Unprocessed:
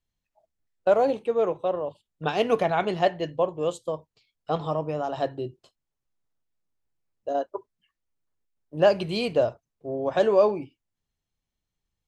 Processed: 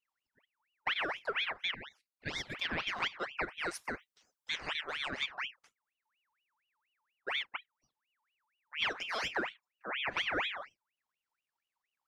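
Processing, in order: 3.37–5.1 tilt +2.5 dB/oct; compressor 6:1, threshold -24 dBFS, peak gain reduction 10.5 dB; 1.74–2.55 brick-wall FIR high-pass 630 Hz; ring modulator with a swept carrier 1900 Hz, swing 55%, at 4.2 Hz; gain -4.5 dB

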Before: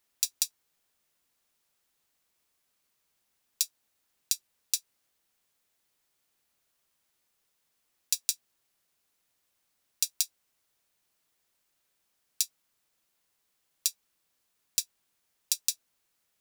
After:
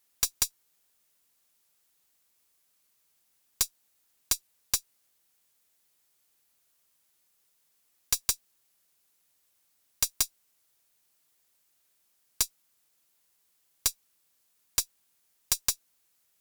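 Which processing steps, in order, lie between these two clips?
high shelf 5700 Hz +7.5 dB; one-sided clip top -20 dBFS, bottom -8 dBFS

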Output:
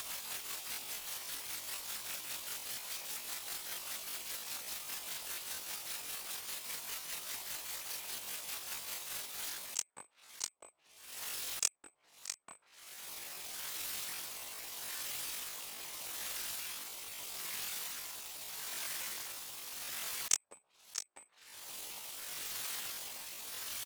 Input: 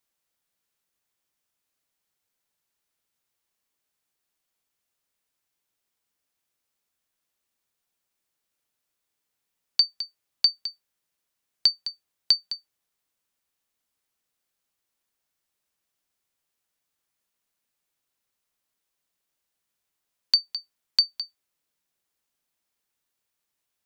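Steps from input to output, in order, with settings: weighting filter A; treble ducked by the level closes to 450 Hz, closed at -30 dBFS; high shelf 6200 Hz +2 dB; on a send: early reflections 12 ms -16 dB, 40 ms -14.5 dB; on the sum: upward compressor, threshold -35 dBFS; rotary speaker horn 5 Hz, later 0.8 Hz, at 8.93; whisperiser; in parallel at -12 dB: sample-rate reducer 5900 Hz, jitter 0%; on the sum: pitch shift +10 st; auto swell 0.247 s; gain +17.5 dB

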